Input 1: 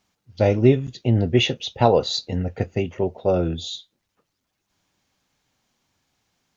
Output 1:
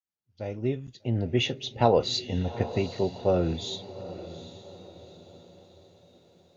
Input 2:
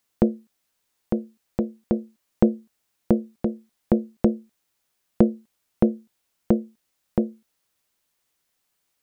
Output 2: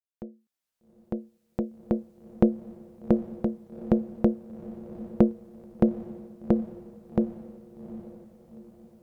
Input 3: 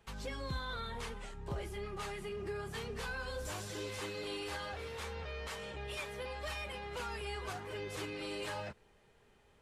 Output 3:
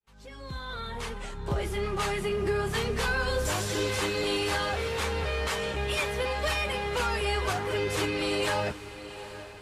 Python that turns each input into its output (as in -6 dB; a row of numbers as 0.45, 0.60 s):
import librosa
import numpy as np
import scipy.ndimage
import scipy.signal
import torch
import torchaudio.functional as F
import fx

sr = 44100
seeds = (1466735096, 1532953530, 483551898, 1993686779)

y = fx.fade_in_head(x, sr, length_s=2.02)
y = fx.echo_diffused(y, sr, ms=802, feedback_pct=44, wet_db=-14)
y = fx.cheby_harmonics(y, sr, harmonics=(6,), levels_db=(-43,), full_scale_db=-1.0)
y = y * 10.0 ** (-30 / 20.0) / np.sqrt(np.mean(np.square(y)))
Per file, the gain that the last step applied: -4.0, -2.5, +12.5 dB